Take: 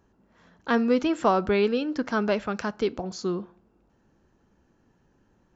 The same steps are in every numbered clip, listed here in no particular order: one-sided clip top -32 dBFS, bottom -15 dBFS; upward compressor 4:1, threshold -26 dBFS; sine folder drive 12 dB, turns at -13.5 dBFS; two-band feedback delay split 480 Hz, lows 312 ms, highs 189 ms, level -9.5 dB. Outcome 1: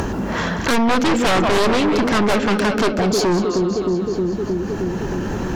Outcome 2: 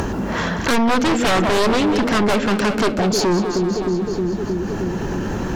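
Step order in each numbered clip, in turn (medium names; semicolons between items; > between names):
two-band feedback delay > one-sided clip > upward compressor > sine folder; one-sided clip > two-band feedback delay > upward compressor > sine folder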